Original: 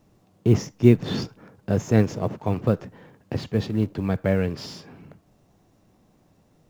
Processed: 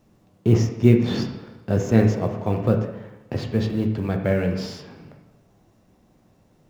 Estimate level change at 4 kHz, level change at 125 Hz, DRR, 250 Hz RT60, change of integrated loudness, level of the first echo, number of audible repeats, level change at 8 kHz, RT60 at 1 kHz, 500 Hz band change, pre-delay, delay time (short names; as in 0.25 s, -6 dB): +0.5 dB, +2.5 dB, 3.5 dB, 1.0 s, +1.5 dB, none, none, n/a, 1.0 s, +1.5 dB, 5 ms, none